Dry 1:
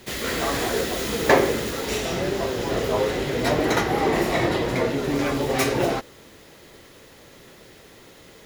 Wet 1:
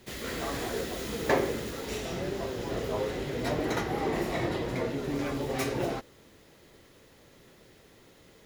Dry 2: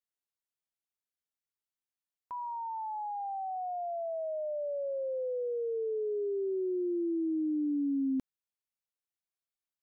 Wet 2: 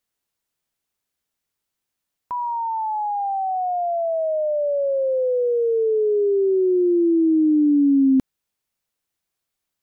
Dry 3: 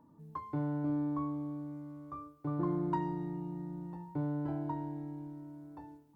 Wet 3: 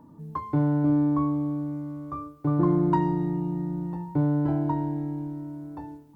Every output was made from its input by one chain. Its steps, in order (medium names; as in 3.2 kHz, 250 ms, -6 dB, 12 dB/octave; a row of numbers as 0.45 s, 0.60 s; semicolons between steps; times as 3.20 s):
bass shelf 380 Hz +4 dB; peak normalisation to -12 dBFS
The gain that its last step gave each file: -10.0 dB, +12.0 dB, +8.5 dB